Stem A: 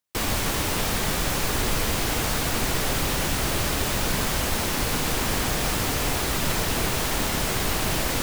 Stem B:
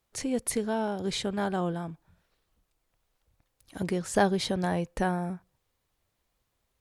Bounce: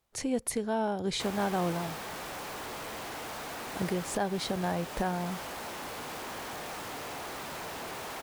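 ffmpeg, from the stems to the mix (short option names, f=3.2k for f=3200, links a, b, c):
-filter_complex "[0:a]highpass=f=580:p=1,highshelf=f=2.4k:g=-11,asoftclip=type=tanh:threshold=-35.5dB,adelay=1050,volume=-2.5dB[a];[1:a]volume=-1dB[b];[a][b]amix=inputs=2:normalize=0,equalizer=f=800:w=1.5:g=3,alimiter=limit=-19.5dB:level=0:latency=1:release=340"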